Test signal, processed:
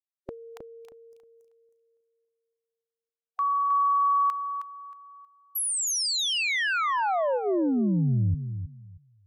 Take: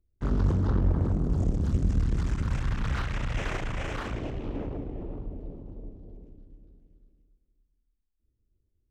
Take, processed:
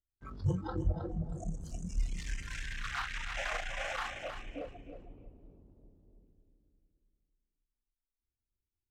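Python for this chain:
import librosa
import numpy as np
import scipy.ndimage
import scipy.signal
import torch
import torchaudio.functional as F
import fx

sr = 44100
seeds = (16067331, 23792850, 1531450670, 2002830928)

y = fx.noise_reduce_blind(x, sr, reduce_db=23)
y = fx.rider(y, sr, range_db=5, speed_s=2.0)
y = fx.echo_feedback(y, sr, ms=315, feedback_pct=21, wet_db=-9.0)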